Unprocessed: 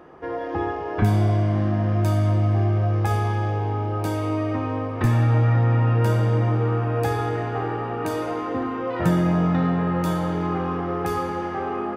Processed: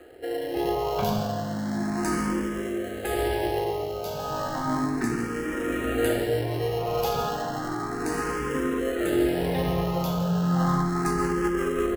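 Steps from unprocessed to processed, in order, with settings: high-pass 350 Hz 12 dB/octave; treble shelf 6.3 kHz +9.5 dB; modulation noise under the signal 22 dB; rotary cabinet horn 0.8 Hz, later 5.5 Hz, at 10.41 s; in parallel at -5 dB: sample-and-hold 37×; on the sum: delay 1146 ms -9.5 dB; on a send at -8 dB: reverberation RT60 0.35 s, pre-delay 77 ms; on the sum: barber-pole phaser +0.33 Hz; trim +3 dB

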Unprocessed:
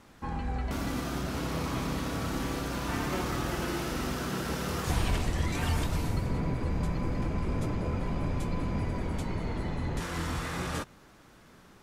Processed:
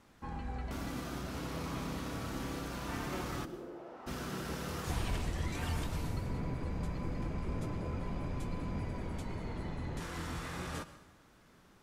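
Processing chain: 3.44–4.06 s: band-pass filter 300 Hz -> 840 Hz, Q 2.2; plate-style reverb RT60 0.91 s, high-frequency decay 0.95×, pre-delay 95 ms, DRR 14 dB; trim -7 dB

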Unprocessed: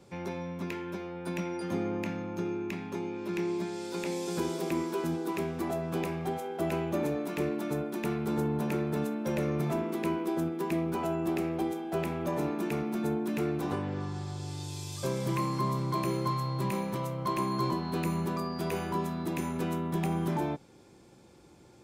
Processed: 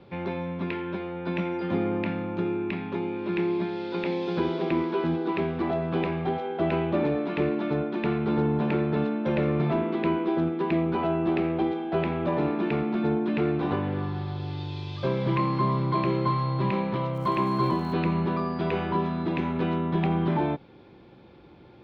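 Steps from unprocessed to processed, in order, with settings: steep low-pass 3.9 kHz 36 dB/octave; 17.13–17.92 s: crackle 370 per s -50 dBFS; trim +5.5 dB

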